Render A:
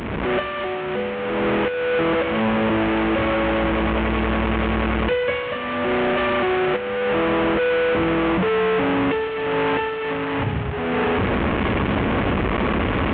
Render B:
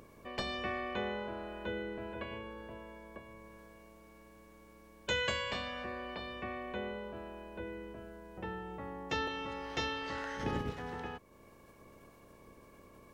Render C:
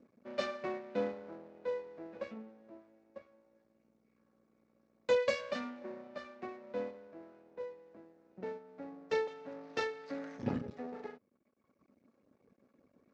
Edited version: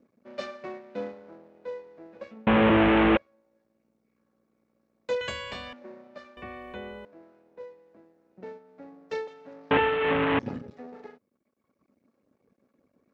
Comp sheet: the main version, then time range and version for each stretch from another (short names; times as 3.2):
C
2.47–3.17 from A
5.21–5.73 from B
6.37–7.05 from B
9.71–10.39 from A